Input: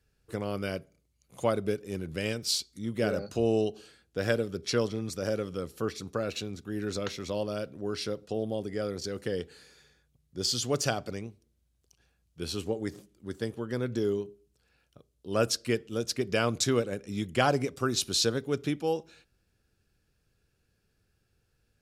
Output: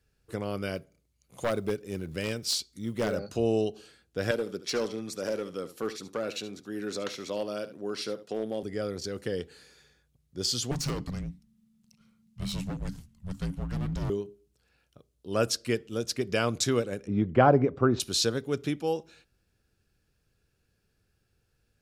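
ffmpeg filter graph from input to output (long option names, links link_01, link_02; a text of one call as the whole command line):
ffmpeg -i in.wav -filter_complex "[0:a]asettb=1/sr,asplit=3[link_01][link_02][link_03];[link_01]atrim=end=0.754[link_04];[link_02]atrim=start=0.75:end=3.16,asetpts=PTS-STARTPTS,afade=type=in:duration=0.004:curve=qsin,afade=type=out:start_time=2.406:duration=0.004:curve=qsin,aeval=exprs='0.1*(abs(mod(val(0)/0.1+3,4)-2)-1)':channel_layout=same,acrusher=bits=9:mode=log:mix=0:aa=0.000001[link_05];[link_03]atrim=start=3.156[link_06];[link_04][link_05]acrossfade=duration=0.004:curve1=hsin:curve2=qsin[link_07];[link_07][link_06]acrossfade=duration=0.004:curve1=qsin:curve2=hsin,asettb=1/sr,asplit=3[link_08][link_09][link_10];[link_08]atrim=end=4.314[link_11];[link_09]atrim=start=4.31:end=8.63,asetpts=PTS-STARTPTS,afade=type=in:duration=0.004:curve=qsin,afade=type=out:start_time=4.316:duration=0.004:curve=qsin,highpass=210,volume=23.5dB,asoftclip=hard,volume=-23.5dB,aecho=1:1:73:0.2,atrim=end_sample=190512[link_12];[link_10]atrim=start=8.626[link_13];[link_11][link_12]acrossfade=duration=0.004:curve1=hsin:curve2=qsin[link_14];[link_14][link_13]acrossfade=duration=0.004:curve1=qsin:curve2=hsin,asettb=1/sr,asplit=3[link_15][link_16][link_17];[link_15]atrim=end=10.714[link_18];[link_16]atrim=start=10.71:end=14.1,asetpts=PTS-STARTPTS,afade=type=in:duration=0.004:curve=qsin,afade=type=out:start_time=3.386:duration=0.004:curve=qsin,equalizer=frequency=89:width_type=o:width=2.8:gain=8.5,asoftclip=type=hard:threshold=-28.5dB,afreqshift=-280[link_19];[link_17]atrim=start=14.096[link_20];[link_18][link_19]acrossfade=duration=0.004:curve1=hsin:curve2=qsin[link_21];[link_21][link_20]acrossfade=duration=0.004:curve1=qsin:curve2=hsin,asettb=1/sr,asplit=3[link_22][link_23][link_24];[link_22]atrim=end=17.074[link_25];[link_23]atrim=start=17.07:end=18,asetpts=PTS-STARTPTS,afade=type=in:duration=0.004:curve=qsin,afade=type=out:start_time=0.926:duration=0.004:curve=qsin,lowpass=1200,acontrast=64[link_26];[link_24]atrim=start=17.996[link_27];[link_25][link_26]acrossfade=duration=0.004:curve1=hsin:curve2=qsin[link_28];[link_28][link_27]acrossfade=duration=0.004:curve1=qsin:curve2=hsin" out.wav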